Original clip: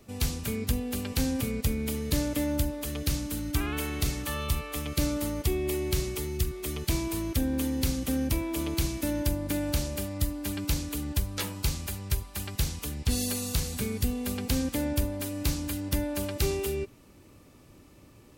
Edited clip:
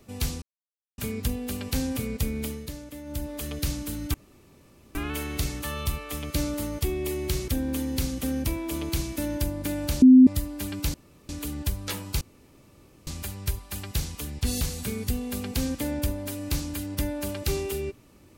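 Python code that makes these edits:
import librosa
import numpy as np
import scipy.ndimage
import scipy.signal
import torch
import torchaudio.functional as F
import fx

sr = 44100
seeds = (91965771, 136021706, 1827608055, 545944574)

y = fx.edit(x, sr, fx.insert_silence(at_s=0.42, length_s=0.56),
    fx.fade_down_up(start_s=1.87, length_s=0.91, db=-12.0, fade_s=0.29),
    fx.insert_room_tone(at_s=3.58, length_s=0.81),
    fx.cut(start_s=6.11, length_s=1.22),
    fx.bleep(start_s=9.87, length_s=0.25, hz=257.0, db=-8.5),
    fx.insert_room_tone(at_s=10.79, length_s=0.35),
    fx.insert_room_tone(at_s=11.71, length_s=0.86),
    fx.cut(start_s=13.25, length_s=0.3), tone=tone)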